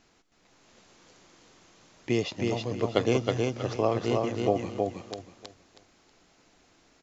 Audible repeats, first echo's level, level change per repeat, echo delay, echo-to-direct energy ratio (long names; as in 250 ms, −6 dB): 3, −3.0 dB, −11.5 dB, 319 ms, −2.5 dB